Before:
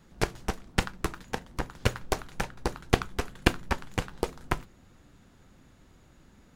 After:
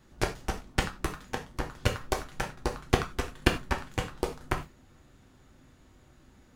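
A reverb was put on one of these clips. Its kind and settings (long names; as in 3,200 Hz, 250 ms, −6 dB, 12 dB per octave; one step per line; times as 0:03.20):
reverb whose tail is shaped and stops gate 120 ms falling, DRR 3.5 dB
level −2 dB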